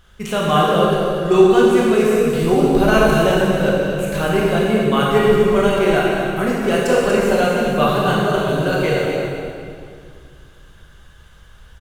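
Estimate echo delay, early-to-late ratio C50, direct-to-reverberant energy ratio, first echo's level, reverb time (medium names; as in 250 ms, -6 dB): 239 ms, -2.5 dB, -5.5 dB, -7.5 dB, 2.2 s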